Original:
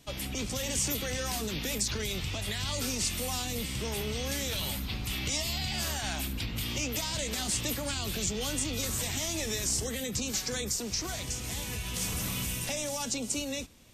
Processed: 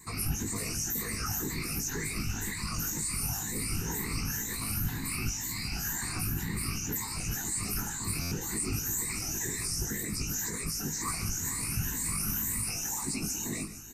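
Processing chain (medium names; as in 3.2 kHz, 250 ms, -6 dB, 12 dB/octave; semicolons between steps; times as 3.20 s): drifting ripple filter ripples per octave 1, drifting +2 Hz, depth 17 dB; treble shelf 4.3 kHz +6 dB; peak limiter -26 dBFS, peak gain reduction 18 dB; whisper effect; static phaser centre 1.4 kHz, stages 4; doubling 19 ms -4.5 dB; multi-tap echo 148/445/469 ms -16/-16.5/-18.5 dB; buffer glitch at 8.21 s, samples 512, times 8; trim +3.5 dB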